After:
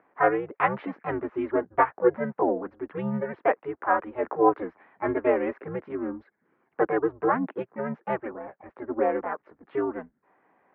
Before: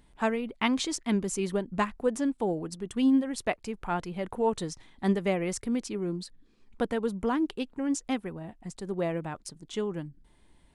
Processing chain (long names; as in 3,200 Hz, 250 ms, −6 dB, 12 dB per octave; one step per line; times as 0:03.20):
pitch-shifted copies added +4 semitones 0 dB
single-sideband voice off tune −130 Hz 490–2,000 Hz
level +5.5 dB